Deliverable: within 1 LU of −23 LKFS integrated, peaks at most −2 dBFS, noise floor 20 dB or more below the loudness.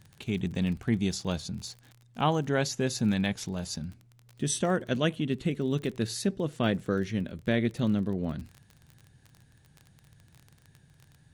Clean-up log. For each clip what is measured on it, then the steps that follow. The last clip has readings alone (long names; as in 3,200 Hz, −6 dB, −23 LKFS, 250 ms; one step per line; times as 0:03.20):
crackle rate 31 per second; integrated loudness −30.0 LKFS; sample peak −12.5 dBFS; target loudness −23.0 LKFS
→ click removal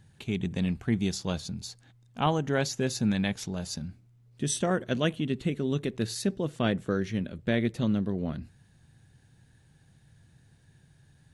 crackle rate 0 per second; integrated loudness −30.0 LKFS; sample peak −12.5 dBFS; target loudness −23.0 LKFS
→ level +7 dB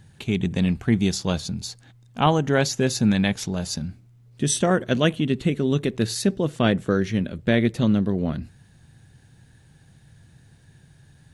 integrated loudness −23.0 LKFS; sample peak −5.5 dBFS; background noise floor −54 dBFS